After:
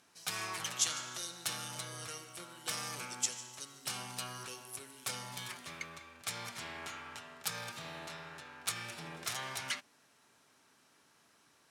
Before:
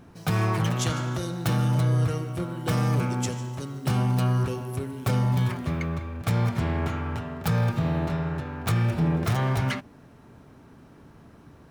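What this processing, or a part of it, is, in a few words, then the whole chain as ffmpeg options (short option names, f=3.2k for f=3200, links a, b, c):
piezo pickup straight into a mixer: -af "lowpass=8.8k,aderivative,volume=4.5dB"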